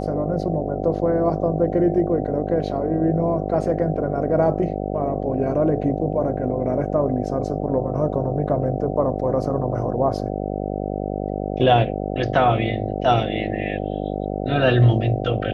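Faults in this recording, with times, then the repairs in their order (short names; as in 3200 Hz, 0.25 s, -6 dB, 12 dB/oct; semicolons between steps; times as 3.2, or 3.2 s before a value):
buzz 50 Hz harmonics 15 -26 dBFS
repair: de-hum 50 Hz, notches 15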